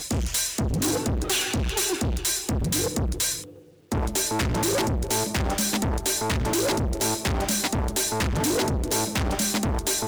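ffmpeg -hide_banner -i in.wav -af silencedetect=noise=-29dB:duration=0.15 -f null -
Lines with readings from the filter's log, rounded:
silence_start: 3.41
silence_end: 3.92 | silence_duration: 0.51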